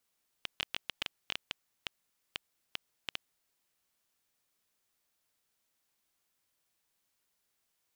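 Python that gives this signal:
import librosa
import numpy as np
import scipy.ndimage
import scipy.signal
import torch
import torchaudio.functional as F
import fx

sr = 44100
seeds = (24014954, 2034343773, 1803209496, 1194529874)

y = fx.geiger_clicks(sr, seeds[0], length_s=2.78, per_s=6.8, level_db=-16.0)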